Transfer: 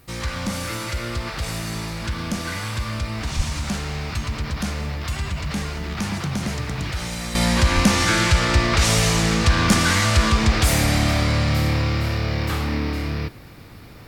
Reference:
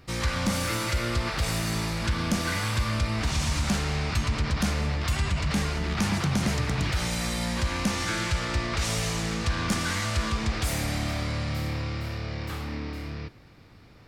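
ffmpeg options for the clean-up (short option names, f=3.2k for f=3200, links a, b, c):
-filter_complex "[0:a]asplit=3[a][b][c];[a]afade=t=out:st=3.36:d=0.02[d];[b]highpass=f=140:w=0.5412,highpass=f=140:w=1.3066,afade=t=in:st=3.36:d=0.02,afade=t=out:st=3.48:d=0.02[e];[c]afade=t=in:st=3.48:d=0.02[f];[d][e][f]amix=inputs=3:normalize=0,asplit=3[g][h][i];[g]afade=t=out:st=7.74:d=0.02[j];[h]highpass=f=140:w=0.5412,highpass=f=140:w=1.3066,afade=t=in:st=7.74:d=0.02,afade=t=out:st=7.86:d=0.02[k];[i]afade=t=in:st=7.86:d=0.02[l];[j][k][l]amix=inputs=3:normalize=0,agate=range=-21dB:threshold=-22dB,asetnsamples=n=441:p=0,asendcmd='7.35 volume volume -10dB',volume=0dB"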